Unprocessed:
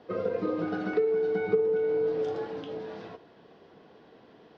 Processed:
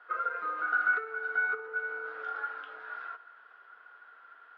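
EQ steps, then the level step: resonant high-pass 1.4 kHz, resonance Q 16; low-pass 3.6 kHz 12 dB/octave; treble shelf 2.3 kHz -10.5 dB; 0.0 dB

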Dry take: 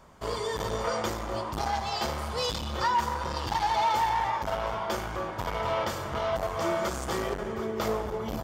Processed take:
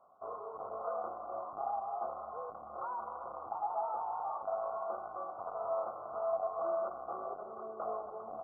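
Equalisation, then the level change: vowel filter a; brick-wall FIR band-stop 1.5–13 kHz; +1.0 dB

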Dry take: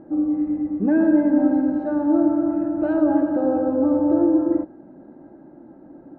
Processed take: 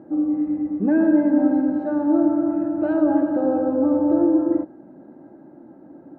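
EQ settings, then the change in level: high-pass 85 Hz; 0.0 dB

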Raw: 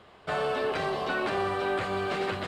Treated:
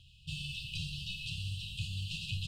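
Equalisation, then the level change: brick-wall FIR band-stop 170–2500 Hz; bass shelf 74 Hz +10.5 dB; +1.0 dB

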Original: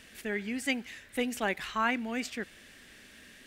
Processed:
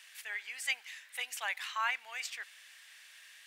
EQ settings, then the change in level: high-pass 960 Hz 24 dB/octave; peaking EQ 1.4 kHz -4 dB 0.77 oct; 0.0 dB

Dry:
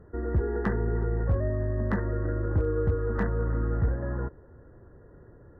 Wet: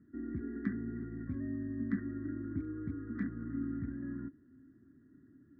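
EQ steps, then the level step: vowel filter i; high-pass 56 Hz; static phaser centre 1.2 kHz, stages 4; +9.5 dB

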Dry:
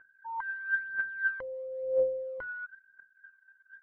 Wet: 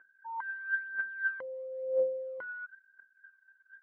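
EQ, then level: high-pass 200 Hz 12 dB/octave; distance through air 98 m; -1.5 dB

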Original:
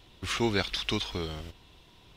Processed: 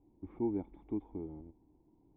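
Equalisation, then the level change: cascade formant filter u; +1.5 dB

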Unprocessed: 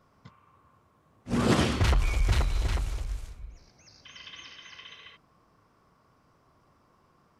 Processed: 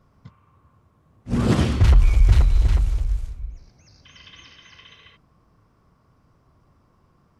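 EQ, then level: bass shelf 160 Hz +9.5 dB; bass shelf 340 Hz +3.5 dB; -1.0 dB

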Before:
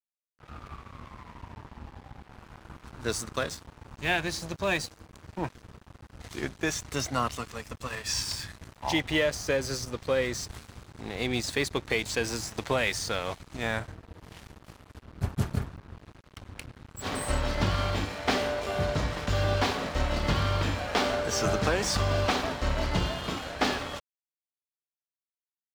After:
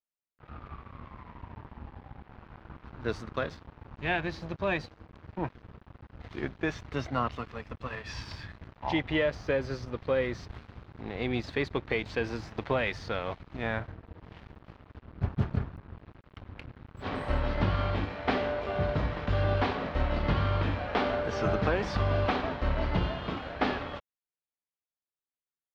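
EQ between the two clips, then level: distance through air 320 m; 0.0 dB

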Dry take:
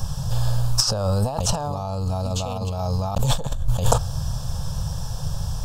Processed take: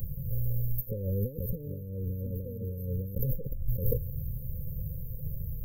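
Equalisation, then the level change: dynamic bell 390 Hz, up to +5 dB, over -43 dBFS, Q 2.6; brick-wall FIR band-stop 560–13000 Hz; pre-emphasis filter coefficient 0.8; +5.0 dB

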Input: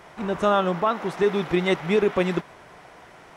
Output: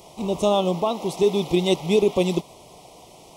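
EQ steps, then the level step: Butterworth band-stop 1.6 kHz, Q 0.85; treble shelf 4.6 kHz +11.5 dB; +2.0 dB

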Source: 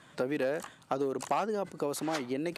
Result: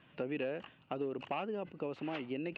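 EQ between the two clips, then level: four-pole ladder low-pass 2.9 kHz, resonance 80%; tilt shelf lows +5.5 dB, about 760 Hz; +3.5 dB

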